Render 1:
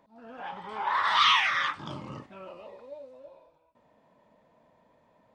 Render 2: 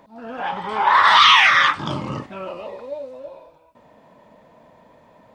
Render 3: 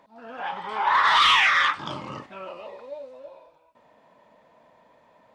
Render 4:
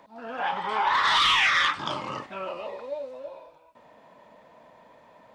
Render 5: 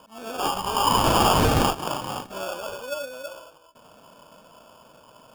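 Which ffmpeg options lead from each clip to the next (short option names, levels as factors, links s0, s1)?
-af "alimiter=level_in=5.01:limit=0.891:release=50:level=0:latency=1,volume=0.891"
-filter_complex "[0:a]asplit=2[s0][s1];[s1]highpass=f=720:p=1,volume=2.24,asoftclip=type=tanh:threshold=0.794[s2];[s0][s2]amix=inputs=2:normalize=0,lowpass=f=6500:p=1,volume=0.501,volume=0.422"
-filter_complex "[0:a]acrossover=split=400|2900[s0][s1][s2];[s0]acompressor=threshold=0.00562:ratio=4[s3];[s1]acompressor=threshold=0.0447:ratio=4[s4];[s2]acompressor=threshold=0.0398:ratio=4[s5];[s3][s4][s5]amix=inputs=3:normalize=0,volume=1.58"
-af "acrusher=samples=22:mix=1:aa=0.000001,volume=1.33"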